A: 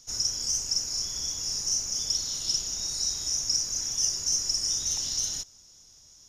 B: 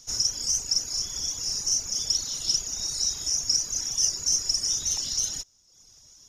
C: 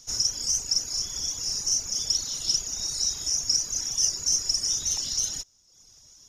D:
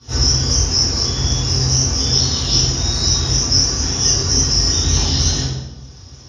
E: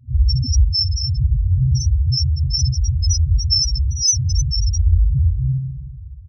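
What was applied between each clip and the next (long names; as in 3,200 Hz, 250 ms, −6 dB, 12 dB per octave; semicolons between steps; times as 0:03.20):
reverb reduction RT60 0.88 s; level +3.5 dB
no processing that can be heard
Savitzky-Golay smoothing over 15 samples; convolution reverb RT60 1.1 s, pre-delay 3 ms, DRR −16 dB; level −3 dB
repeating echo 212 ms, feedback 31%, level −8 dB; spectral peaks only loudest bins 2; level +6.5 dB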